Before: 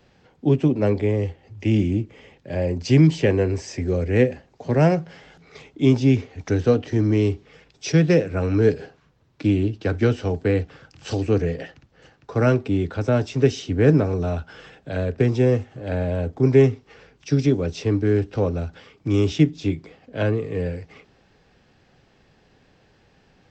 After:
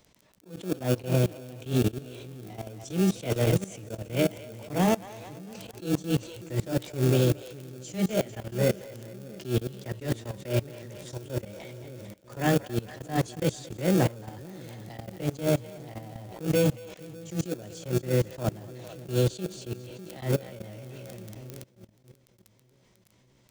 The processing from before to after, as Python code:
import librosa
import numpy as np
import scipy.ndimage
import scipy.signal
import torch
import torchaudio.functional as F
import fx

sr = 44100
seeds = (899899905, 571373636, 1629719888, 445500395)

p1 = fx.pitch_heads(x, sr, semitones=3.5)
p2 = fx.echo_split(p1, sr, split_hz=470.0, low_ms=596, high_ms=224, feedback_pct=52, wet_db=-11)
p3 = fx.sample_hold(p2, sr, seeds[0], rate_hz=1000.0, jitter_pct=0)
p4 = p2 + (p3 * librosa.db_to_amplitude(-11.0))
p5 = fx.dmg_crackle(p4, sr, seeds[1], per_s=14.0, level_db=-27.0)
p6 = fx.high_shelf(p5, sr, hz=4700.0, db=11.5)
p7 = fx.level_steps(p6, sr, step_db=21)
y = fx.attack_slew(p7, sr, db_per_s=180.0)